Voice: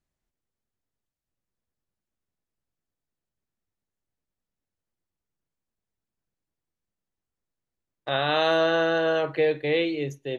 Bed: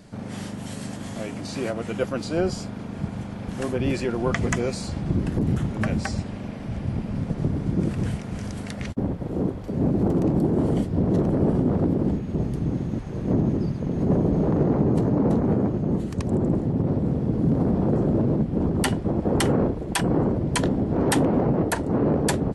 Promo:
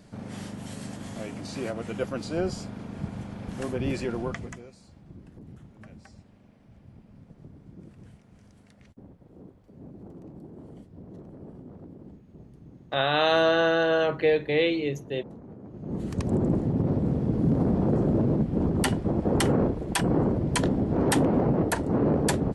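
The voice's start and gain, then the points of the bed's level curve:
4.85 s, +0.5 dB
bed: 4.18 s -4.5 dB
4.71 s -23.5 dB
15.61 s -23.5 dB
16.08 s -2 dB

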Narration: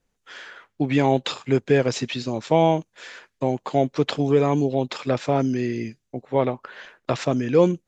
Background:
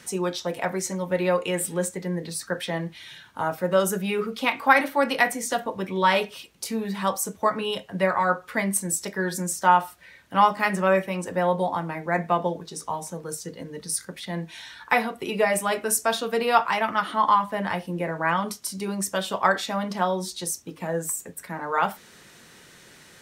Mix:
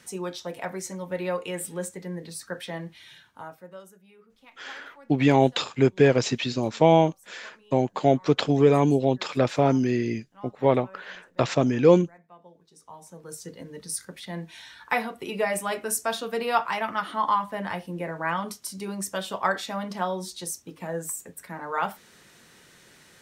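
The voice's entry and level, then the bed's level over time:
4.30 s, +0.5 dB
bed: 3.18 s -6 dB
3.99 s -29.5 dB
12.3 s -29.5 dB
13.44 s -4 dB

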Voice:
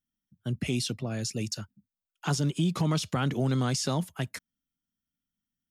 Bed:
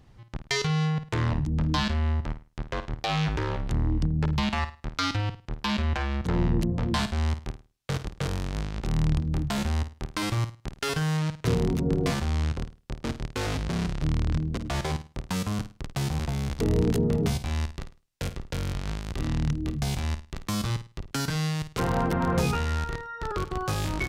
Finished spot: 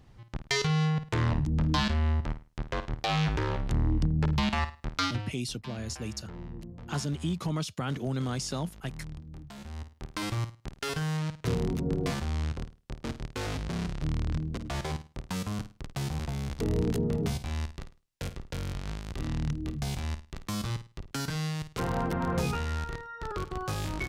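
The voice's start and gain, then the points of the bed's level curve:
4.65 s, -4.5 dB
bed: 5.03 s -1 dB
5.4 s -17.5 dB
9.57 s -17.5 dB
10.14 s -4.5 dB

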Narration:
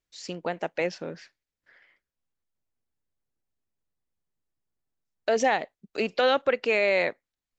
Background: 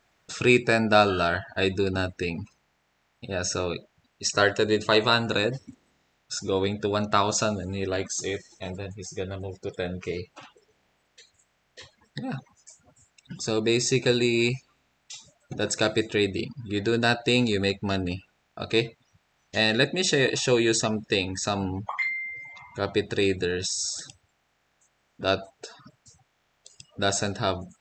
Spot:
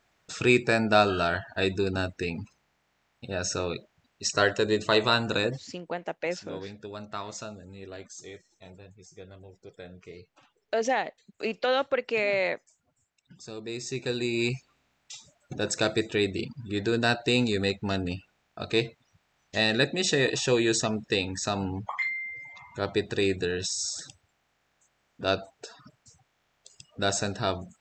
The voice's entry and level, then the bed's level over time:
5.45 s, -3.0 dB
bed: 5.53 s -2 dB
5.8 s -14 dB
13.64 s -14 dB
14.57 s -2 dB

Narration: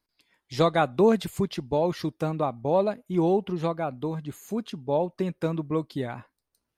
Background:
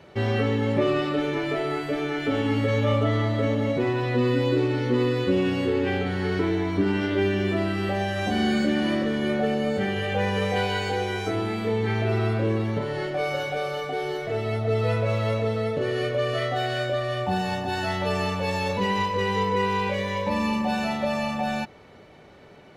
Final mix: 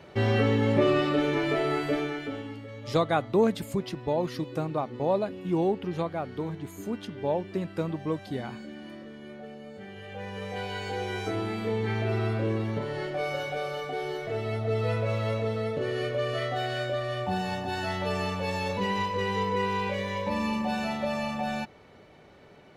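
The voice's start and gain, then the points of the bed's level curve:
2.35 s, -3.0 dB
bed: 1.94 s 0 dB
2.64 s -19 dB
9.72 s -19 dB
11.17 s -4 dB

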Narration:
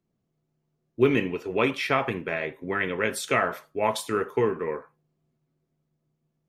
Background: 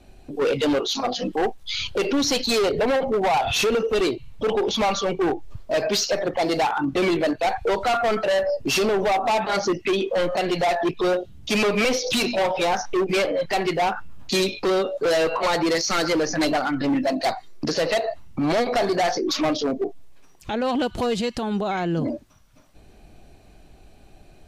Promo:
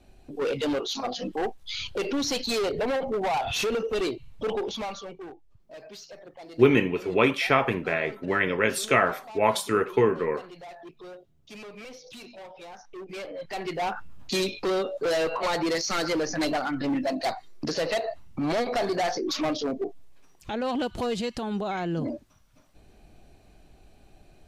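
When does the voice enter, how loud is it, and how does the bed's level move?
5.60 s, +2.5 dB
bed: 4.54 s -6 dB
5.41 s -22.5 dB
12.73 s -22.5 dB
13.97 s -5 dB

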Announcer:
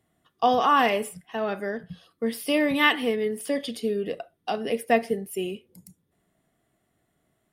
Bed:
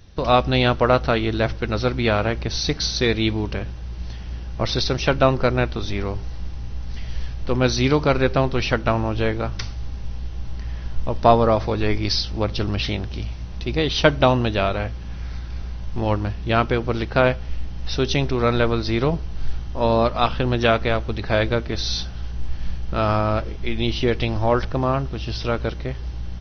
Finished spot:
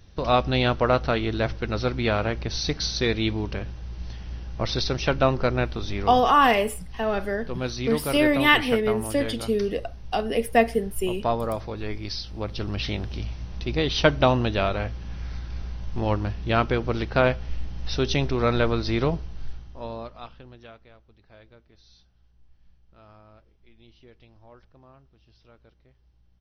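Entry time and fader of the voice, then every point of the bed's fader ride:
5.65 s, +2.5 dB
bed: 6.1 s -4 dB
6.37 s -10.5 dB
12.18 s -10.5 dB
13.04 s -3 dB
19.06 s -3 dB
20.88 s -32 dB

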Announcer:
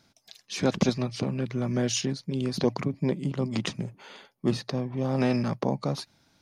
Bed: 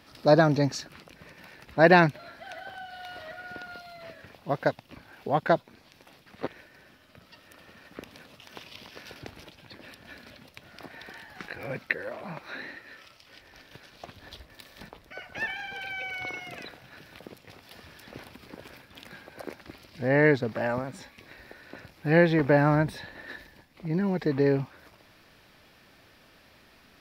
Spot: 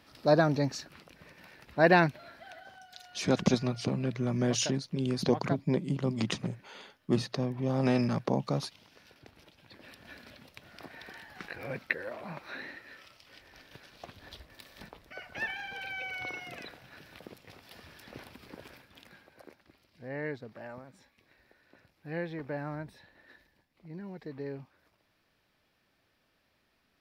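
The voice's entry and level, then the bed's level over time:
2.65 s, -2.0 dB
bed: 2.36 s -4.5 dB
2.9 s -13.5 dB
9.17 s -13.5 dB
10.01 s -3 dB
18.62 s -3 dB
19.66 s -16 dB

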